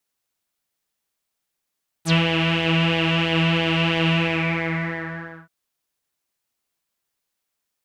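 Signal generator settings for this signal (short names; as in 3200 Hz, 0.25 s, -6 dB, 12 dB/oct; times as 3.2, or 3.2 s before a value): synth patch with pulse-width modulation E3, sub -25 dB, noise -8.5 dB, filter lowpass, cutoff 1500 Hz, Q 6.4, filter envelope 3 oct, filter decay 0.06 s, filter sustain 30%, attack 72 ms, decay 0.10 s, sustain -3 dB, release 1.37 s, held 2.06 s, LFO 3 Hz, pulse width 26%, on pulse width 14%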